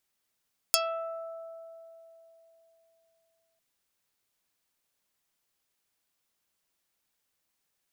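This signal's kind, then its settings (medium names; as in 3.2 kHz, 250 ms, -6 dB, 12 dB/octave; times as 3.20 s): plucked string E5, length 2.85 s, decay 3.56 s, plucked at 0.33, dark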